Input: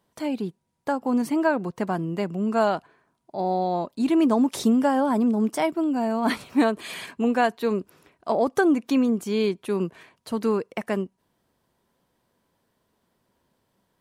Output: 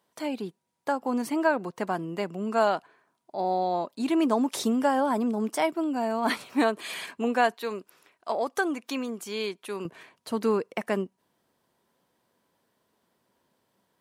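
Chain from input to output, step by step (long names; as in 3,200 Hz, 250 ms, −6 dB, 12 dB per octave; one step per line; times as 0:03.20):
high-pass filter 410 Hz 6 dB per octave, from 0:07.54 1,000 Hz, from 0:09.85 210 Hz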